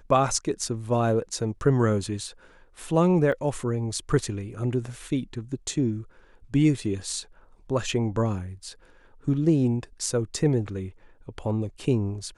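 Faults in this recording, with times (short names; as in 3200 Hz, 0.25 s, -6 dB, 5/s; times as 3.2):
3.32 gap 4.4 ms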